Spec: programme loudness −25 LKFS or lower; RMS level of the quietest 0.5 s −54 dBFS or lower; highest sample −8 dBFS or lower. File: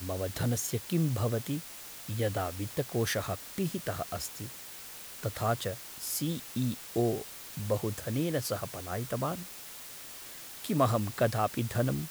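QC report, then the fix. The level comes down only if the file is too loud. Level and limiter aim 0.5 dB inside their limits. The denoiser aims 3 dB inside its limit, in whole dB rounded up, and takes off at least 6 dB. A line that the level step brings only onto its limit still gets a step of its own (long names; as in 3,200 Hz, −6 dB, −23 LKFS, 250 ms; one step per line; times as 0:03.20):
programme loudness −33.0 LKFS: in spec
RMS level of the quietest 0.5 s −46 dBFS: out of spec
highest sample −13.5 dBFS: in spec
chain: broadband denoise 11 dB, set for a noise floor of −46 dBFS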